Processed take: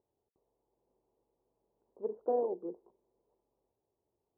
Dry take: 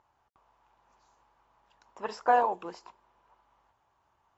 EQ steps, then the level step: dynamic bell 290 Hz, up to +5 dB, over -46 dBFS, Q 1.5; four-pole ladder low-pass 500 Hz, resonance 55%; bass shelf 65 Hz -10.5 dB; +3.0 dB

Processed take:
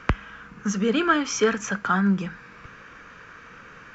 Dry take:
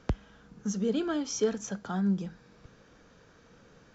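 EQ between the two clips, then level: high-order bell 1.7 kHz +13 dB; +6.0 dB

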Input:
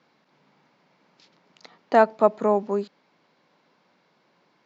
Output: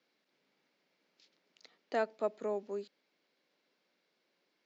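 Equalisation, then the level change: high-pass 360 Hz 12 dB/octave; peaking EQ 960 Hz -13 dB 1.3 oct; -8.0 dB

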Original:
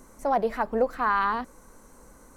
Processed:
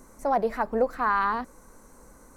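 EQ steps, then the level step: peaking EQ 3.1 kHz -5 dB 0.47 oct; 0.0 dB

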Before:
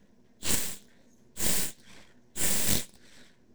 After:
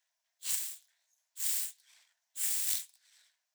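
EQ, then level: steep high-pass 610 Hz 96 dB/octave; differentiator; treble shelf 5.4 kHz -7.5 dB; 0.0 dB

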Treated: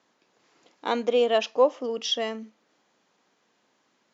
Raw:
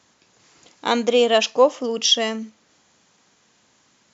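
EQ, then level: band-pass 310–6000 Hz; tilt EQ -2 dB/octave; -6.0 dB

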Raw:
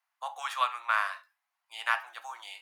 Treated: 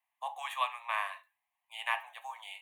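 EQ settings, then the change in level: static phaser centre 1.4 kHz, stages 6; 0.0 dB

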